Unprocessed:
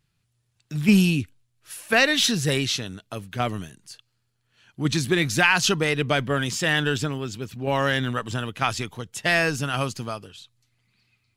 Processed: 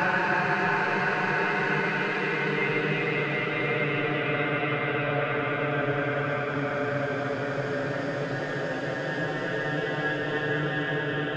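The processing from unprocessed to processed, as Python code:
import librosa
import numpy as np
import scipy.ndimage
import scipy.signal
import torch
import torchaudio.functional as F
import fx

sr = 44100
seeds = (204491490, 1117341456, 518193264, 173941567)

y = fx.filter_lfo_lowpass(x, sr, shape='saw_up', hz=3.2, low_hz=390.0, high_hz=3300.0, q=2.2)
y = fx.paulstretch(y, sr, seeds[0], factor=8.1, window_s=1.0, from_s=5.48)
y = F.gain(torch.from_numpy(y), -6.0).numpy()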